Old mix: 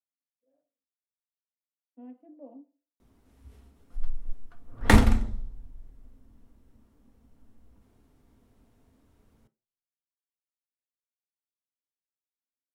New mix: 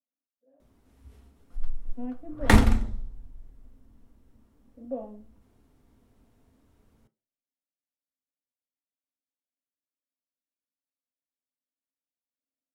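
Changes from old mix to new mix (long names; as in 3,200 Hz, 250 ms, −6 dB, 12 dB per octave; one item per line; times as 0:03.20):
speech +10.5 dB
background: entry −2.40 s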